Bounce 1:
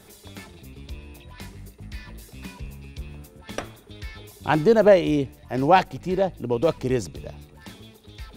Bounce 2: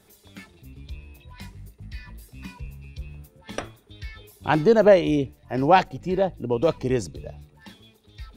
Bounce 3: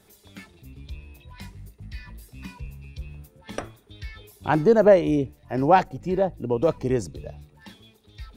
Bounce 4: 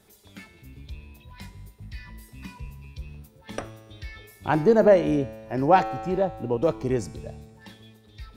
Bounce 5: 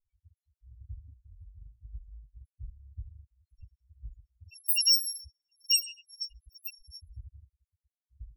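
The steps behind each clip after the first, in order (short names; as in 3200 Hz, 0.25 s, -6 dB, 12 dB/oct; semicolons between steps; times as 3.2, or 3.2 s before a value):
spectral noise reduction 8 dB
dynamic EQ 3400 Hz, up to -8 dB, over -45 dBFS, Q 1
resonator 110 Hz, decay 1.8 s, mix 70%; gain +8.5 dB
FFT order left unsorted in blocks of 256 samples; loudest bins only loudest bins 4; low-pass opened by the level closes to 570 Hz, open at -21.5 dBFS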